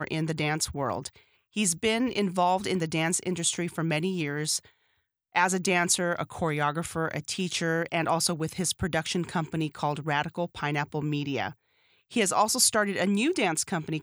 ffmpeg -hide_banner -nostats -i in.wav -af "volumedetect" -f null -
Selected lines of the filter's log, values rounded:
mean_volume: -28.4 dB
max_volume: -8.7 dB